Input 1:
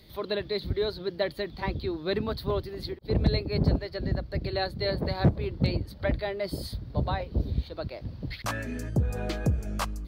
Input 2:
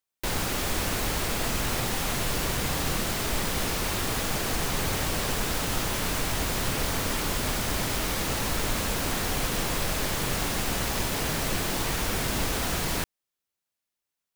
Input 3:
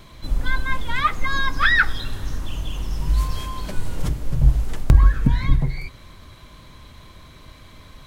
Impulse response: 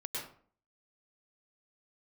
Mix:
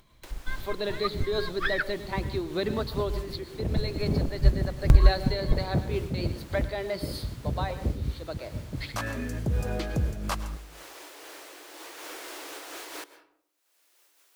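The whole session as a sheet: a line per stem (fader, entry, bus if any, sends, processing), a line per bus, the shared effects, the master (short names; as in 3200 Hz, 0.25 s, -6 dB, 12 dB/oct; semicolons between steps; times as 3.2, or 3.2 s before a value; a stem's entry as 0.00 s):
+2.0 dB, 0.50 s, send -10.5 dB, limiter -20 dBFS, peak gain reduction 6 dB
11.81 s -19.5 dB -> 12.15 s -8 dB, 0.00 s, send -14 dB, Chebyshev high-pass 290 Hz, order 8; slew limiter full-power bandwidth 200 Hz
+1.0 dB, 0.00 s, no send, upward expander 2.5:1, over -37 dBFS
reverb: on, RT60 0.50 s, pre-delay 97 ms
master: upward compressor, threshold -35 dBFS; noise-modulated level, depth 55%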